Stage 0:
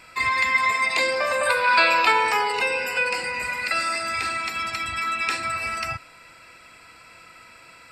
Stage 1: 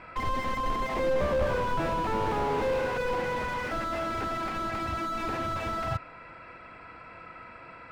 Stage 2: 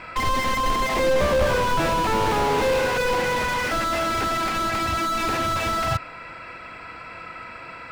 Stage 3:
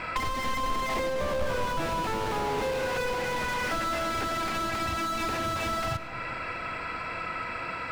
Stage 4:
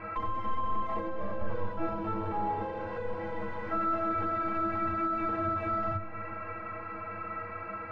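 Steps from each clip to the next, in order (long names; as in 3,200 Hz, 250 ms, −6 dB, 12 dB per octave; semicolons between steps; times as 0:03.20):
low-pass filter 1,500 Hz 12 dB per octave; slew-rate limiting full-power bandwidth 18 Hz; level +5.5 dB
high-shelf EQ 2,800 Hz +11.5 dB; level +6 dB
downward compressor 6 to 1, threshold −31 dBFS, peak gain reduction 14.5 dB; on a send at −11 dB: convolution reverb RT60 3.6 s, pre-delay 65 ms; on the sum: level +3.5 dB
low-pass filter 1,300 Hz 12 dB per octave; stiff-string resonator 97 Hz, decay 0.24 s, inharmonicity 0.03; level +5 dB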